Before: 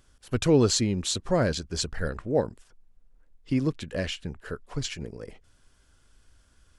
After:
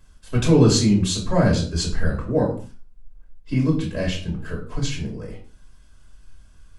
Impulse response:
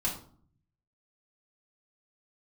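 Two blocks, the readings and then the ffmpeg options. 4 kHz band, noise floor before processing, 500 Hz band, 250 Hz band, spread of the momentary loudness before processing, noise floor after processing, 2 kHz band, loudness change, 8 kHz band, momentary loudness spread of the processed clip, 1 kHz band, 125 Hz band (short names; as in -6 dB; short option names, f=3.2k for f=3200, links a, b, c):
+3.5 dB, -63 dBFS, +3.5 dB, +7.5 dB, 16 LU, -49 dBFS, +4.0 dB, +6.0 dB, +3.0 dB, 16 LU, +5.0 dB, +9.0 dB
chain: -filter_complex "[1:a]atrim=start_sample=2205,afade=t=out:st=0.32:d=0.01,atrim=end_sample=14553[a];[0:a][a]afir=irnorm=-1:irlink=0,volume=-1dB"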